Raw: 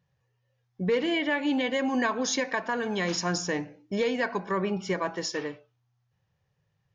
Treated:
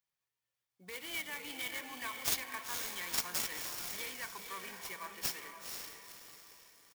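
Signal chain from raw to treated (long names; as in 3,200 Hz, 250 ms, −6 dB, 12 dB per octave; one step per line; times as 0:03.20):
first difference
comb filter 0.9 ms, depth 34%
feedback delay with all-pass diffusion 496 ms, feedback 42%, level −5 dB
converter with an unsteady clock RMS 0.037 ms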